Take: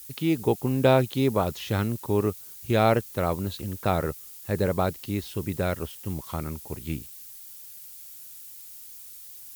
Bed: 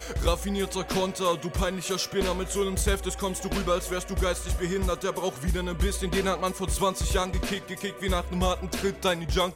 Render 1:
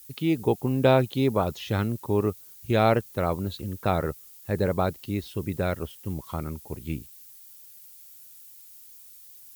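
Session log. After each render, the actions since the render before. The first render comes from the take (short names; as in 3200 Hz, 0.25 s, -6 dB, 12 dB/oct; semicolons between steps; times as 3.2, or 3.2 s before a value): denoiser 6 dB, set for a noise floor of -44 dBFS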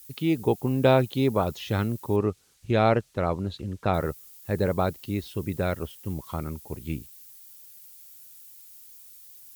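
2.16–3.94 air absorption 70 m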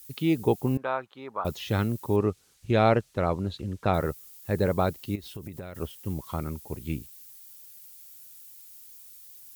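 0.77–1.45 band-pass 1200 Hz, Q 2.4; 5.15–5.75 compressor 16:1, threshold -34 dBFS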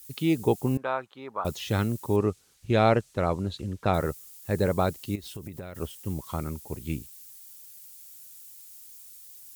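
dynamic EQ 7900 Hz, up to +6 dB, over -57 dBFS, Q 1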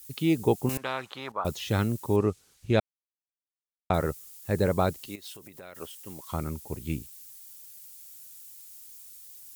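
0.69–1.32 spectral compressor 2:1; 2.8–3.9 mute; 5.07–6.32 HPF 710 Hz 6 dB/oct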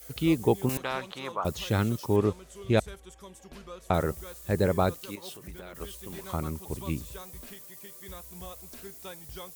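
add bed -18.5 dB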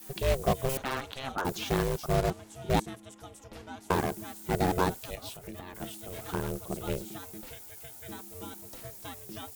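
ring modulator 270 Hz; in parallel at -7.5 dB: wrapped overs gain 25 dB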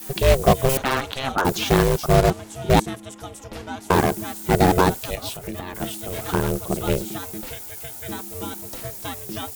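gain +11 dB; limiter -2 dBFS, peak gain reduction 2.5 dB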